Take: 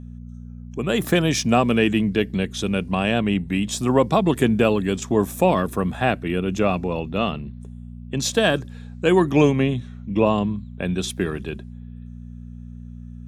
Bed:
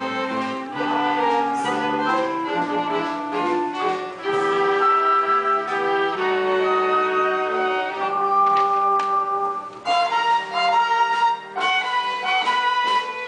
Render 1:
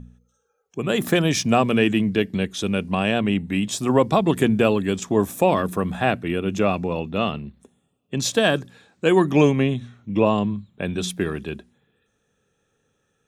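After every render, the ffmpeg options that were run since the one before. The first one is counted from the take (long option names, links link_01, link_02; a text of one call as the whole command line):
ffmpeg -i in.wav -af "bandreject=frequency=60:width_type=h:width=4,bandreject=frequency=120:width_type=h:width=4,bandreject=frequency=180:width_type=h:width=4,bandreject=frequency=240:width_type=h:width=4" out.wav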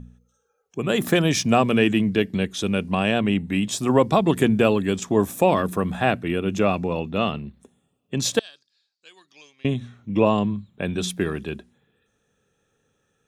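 ffmpeg -i in.wav -filter_complex "[0:a]asettb=1/sr,asplit=3[link_01][link_02][link_03];[link_01]atrim=end=8.394[link_04];[link_02]atrim=start=8.39:end=9.65,asetpts=PTS-STARTPTS,afade=type=in:duration=0.004:curve=qsin,afade=type=out:start_time=1.256:duration=0.004:curve=qsin,bandpass=frequency=4700:width_type=q:width=8.6[link_05];[link_03]atrim=start=9.646[link_06];[link_04][link_05]acrossfade=duration=0.004:curve1=hsin:curve2=qsin[link_07];[link_07][link_06]acrossfade=duration=0.004:curve1=qsin:curve2=hsin" out.wav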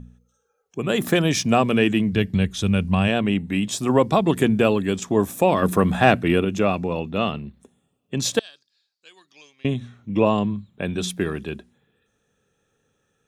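ffmpeg -i in.wav -filter_complex "[0:a]asplit=3[link_01][link_02][link_03];[link_01]afade=type=out:start_time=2.12:duration=0.02[link_04];[link_02]asubboost=boost=7:cutoff=140,afade=type=in:start_time=2.12:duration=0.02,afade=type=out:start_time=3.07:duration=0.02[link_05];[link_03]afade=type=in:start_time=3.07:duration=0.02[link_06];[link_04][link_05][link_06]amix=inputs=3:normalize=0,asettb=1/sr,asplit=3[link_07][link_08][link_09];[link_07]atrim=end=5.624[link_10];[link_08]atrim=start=5.62:end=6.45,asetpts=PTS-STARTPTS,afade=type=in:duration=0.004:curve=qsin,afade=type=out:start_time=0.826:duration=0.004:curve=qsin,acontrast=51[link_11];[link_09]atrim=start=6.446[link_12];[link_10][link_11]acrossfade=duration=0.004:curve1=hsin:curve2=qsin[link_13];[link_13][link_12]acrossfade=duration=0.004:curve1=qsin:curve2=hsin" out.wav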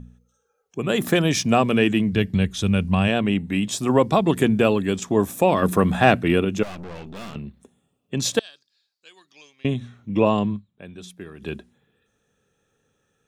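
ffmpeg -i in.wav -filter_complex "[0:a]asettb=1/sr,asplit=3[link_01][link_02][link_03];[link_01]atrim=end=6.634[link_04];[link_02]atrim=start=6.63:end=7.36,asetpts=PTS-STARTPTS,afade=type=in:duration=0.004:curve=qsin,afade=type=out:start_time=0.726:duration=0.004:curve=qsin,aeval=exprs='(tanh(50.1*val(0)+0.7)-tanh(0.7))/50.1':channel_layout=same[link_05];[link_03]atrim=start=7.356[link_06];[link_04][link_05]acrossfade=duration=0.004:curve1=hsin:curve2=qsin[link_07];[link_07][link_06]acrossfade=duration=0.004:curve1=qsin:curve2=hsin,asplit=3[link_08][link_09][link_10];[link_08]atrim=end=10.8,asetpts=PTS-STARTPTS,afade=type=out:start_time=10.56:duration=0.24:curve=exp:silence=0.199526[link_11];[link_09]atrim=start=10.8:end=11.2,asetpts=PTS-STARTPTS,volume=-14dB[link_12];[link_10]atrim=start=11.2,asetpts=PTS-STARTPTS,afade=type=in:duration=0.24:curve=exp:silence=0.199526[link_13];[link_11][link_12][link_13]concat=n=3:v=0:a=1" out.wav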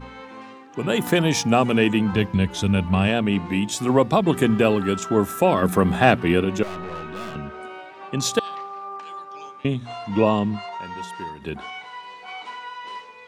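ffmpeg -i in.wav -i bed.wav -filter_complex "[1:a]volume=-15.5dB[link_01];[0:a][link_01]amix=inputs=2:normalize=0" out.wav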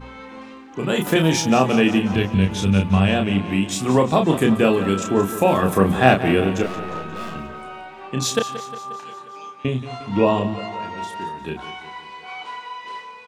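ffmpeg -i in.wav -filter_complex "[0:a]asplit=2[link_01][link_02];[link_02]adelay=31,volume=-5dB[link_03];[link_01][link_03]amix=inputs=2:normalize=0,asplit=2[link_04][link_05];[link_05]aecho=0:1:178|356|534|712|890|1068:0.211|0.125|0.0736|0.0434|0.0256|0.0151[link_06];[link_04][link_06]amix=inputs=2:normalize=0" out.wav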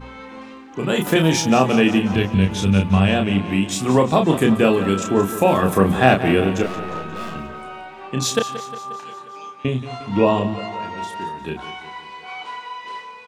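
ffmpeg -i in.wav -af "volume=1dB,alimiter=limit=-2dB:level=0:latency=1" out.wav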